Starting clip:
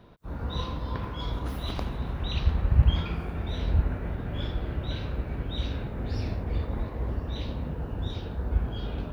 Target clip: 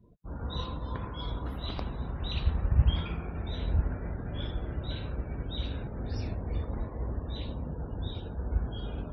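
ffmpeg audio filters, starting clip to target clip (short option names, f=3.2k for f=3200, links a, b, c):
-af "afftdn=nr=27:nf=-48,crystalizer=i=1:c=0,volume=-3.5dB"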